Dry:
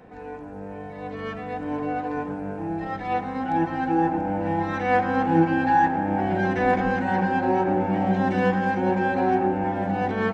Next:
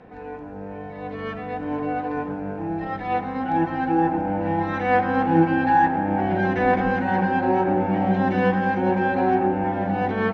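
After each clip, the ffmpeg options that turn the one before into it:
ffmpeg -i in.wav -af "lowpass=4500,volume=1.5dB" out.wav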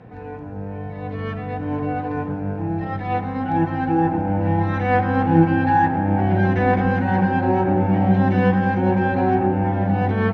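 ffmpeg -i in.wav -af "equalizer=frequency=110:width=1.3:gain=14" out.wav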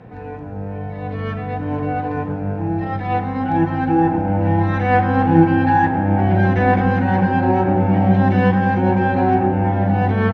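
ffmpeg -i in.wav -filter_complex "[0:a]asplit=2[link_01][link_02];[link_02]adelay=39,volume=-13.5dB[link_03];[link_01][link_03]amix=inputs=2:normalize=0,volume=2.5dB" out.wav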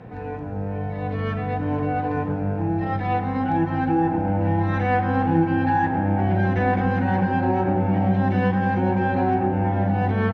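ffmpeg -i in.wav -af "acompressor=threshold=-21dB:ratio=2" out.wav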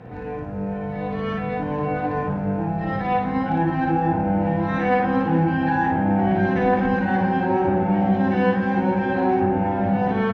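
ffmpeg -i in.wav -af "aecho=1:1:26|56:0.282|0.708" out.wav

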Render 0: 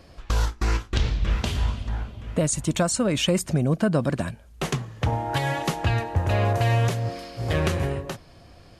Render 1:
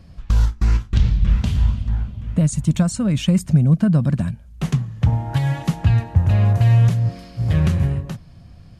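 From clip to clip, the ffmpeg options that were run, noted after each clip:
ffmpeg -i in.wav -af "lowshelf=frequency=260:width_type=q:width=1.5:gain=11,volume=-4dB" out.wav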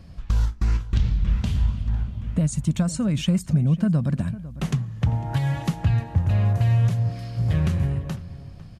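ffmpeg -i in.wav -filter_complex "[0:a]acompressor=threshold=-26dB:ratio=1.5,asplit=2[link_01][link_02];[link_02]adelay=501.5,volume=-16dB,highshelf=frequency=4000:gain=-11.3[link_03];[link_01][link_03]amix=inputs=2:normalize=0" out.wav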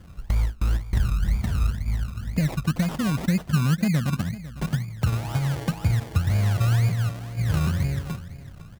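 ffmpeg -i in.wav -af "acrusher=samples=27:mix=1:aa=0.000001:lfo=1:lforange=16.2:lforate=2,volume=-1.5dB" out.wav

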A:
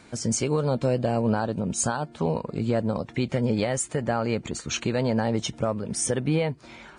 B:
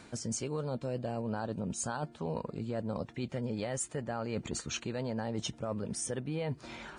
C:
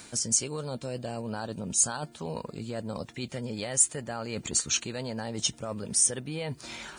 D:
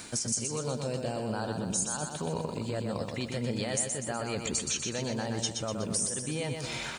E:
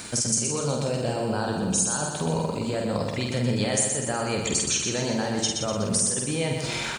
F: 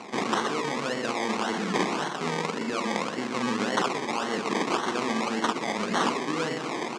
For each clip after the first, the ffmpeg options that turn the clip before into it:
ffmpeg -i in.wav -af "areverse,acompressor=threshold=-33dB:ratio=6,areverse,bandreject=frequency=2200:width=18" out.wav
ffmpeg -i in.wav -af "crystalizer=i=4.5:c=0" out.wav
ffmpeg -i in.wav -filter_complex "[0:a]acompressor=threshold=-33dB:ratio=6,asplit=2[link_01][link_02];[link_02]aecho=0:1:123|246|369|492|615|738:0.562|0.287|0.146|0.0746|0.038|0.0194[link_03];[link_01][link_03]amix=inputs=2:normalize=0,volume=3.5dB" out.wav
ffmpeg -i in.wav -filter_complex "[0:a]asplit=2[link_01][link_02];[link_02]adelay=49,volume=-4dB[link_03];[link_01][link_03]amix=inputs=2:normalize=0,volume=5.5dB" out.wav
ffmpeg -i in.wav -af "acrusher=samples=25:mix=1:aa=0.000001:lfo=1:lforange=15:lforate=1.8,highpass=frequency=210:width=0.5412,highpass=frequency=210:width=1.3066,equalizer=frequency=580:width_type=q:width=4:gain=-7,equalizer=frequency=1100:width_type=q:width=4:gain=5,equalizer=frequency=2100:width_type=q:width=4:gain=3,lowpass=frequency=7600:width=0.5412,lowpass=frequency=7600:width=1.3066" out.wav

